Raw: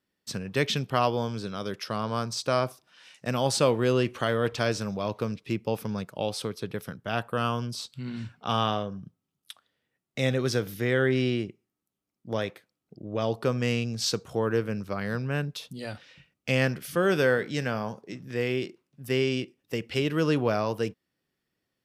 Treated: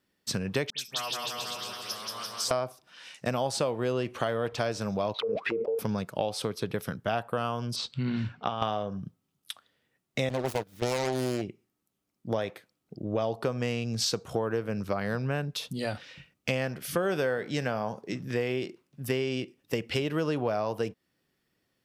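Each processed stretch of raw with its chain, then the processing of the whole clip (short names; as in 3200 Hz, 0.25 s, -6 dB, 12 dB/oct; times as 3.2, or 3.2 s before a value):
0.7–2.51 pre-emphasis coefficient 0.97 + dispersion highs, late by 90 ms, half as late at 2200 Hz + bouncing-ball echo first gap 0.18 s, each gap 0.9×, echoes 6, each echo -2 dB
5.14–5.79 auto-wah 460–4300 Hz, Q 22, down, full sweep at -27 dBFS + fast leveller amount 100%
7.76–8.62 LPF 4200 Hz + negative-ratio compressor -30 dBFS, ratio -0.5
10.29–11.42 self-modulated delay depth 0.78 ms + gate -30 dBFS, range -18 dB + upward compressor, threshold -41 dBFS
whole clip: dynamic EQ 710 Hz, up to +7 dB, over -41 dBFS, Q 1.5; compressor 6:1, threshold -31 dBFS; gain +5 dB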